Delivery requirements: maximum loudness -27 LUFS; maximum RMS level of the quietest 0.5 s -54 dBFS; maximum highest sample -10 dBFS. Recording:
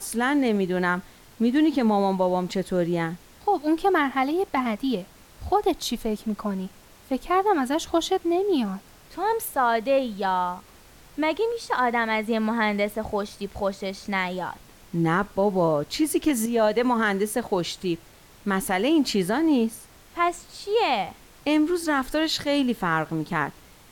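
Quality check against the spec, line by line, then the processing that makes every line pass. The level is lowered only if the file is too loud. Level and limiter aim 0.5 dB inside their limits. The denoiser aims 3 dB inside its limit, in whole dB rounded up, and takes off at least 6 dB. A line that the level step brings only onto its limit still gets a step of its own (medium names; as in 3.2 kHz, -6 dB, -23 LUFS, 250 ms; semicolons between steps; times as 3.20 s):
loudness -24.5 LUFS: fail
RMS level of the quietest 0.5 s -50 dBFS: fail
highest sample -11.5 dBFS: pass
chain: noise reduction 6 dB, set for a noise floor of -50 dBFS; trim -3 dB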